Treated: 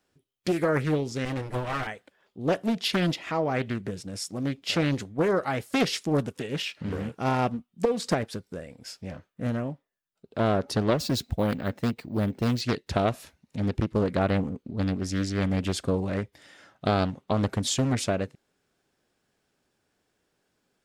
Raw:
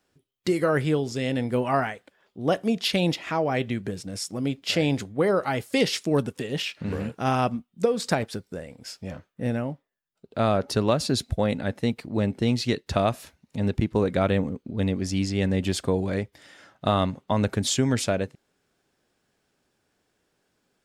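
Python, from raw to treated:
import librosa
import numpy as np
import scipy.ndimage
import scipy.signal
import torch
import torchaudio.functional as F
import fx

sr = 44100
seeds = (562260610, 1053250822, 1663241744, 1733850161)

y = fx.lower_of_two(x, sr, delay_ms=6.5, at=(1.25, 1.87))
y = fx.resample_bad(y, sr, factor=2, down='filtered', up='hold', at=(10.98, 12.61))
y = fx.doppler_dist(y, sr, depth_ms=0.95)
y = F.gain(torch.from_numpy(y), -2.0).numpy()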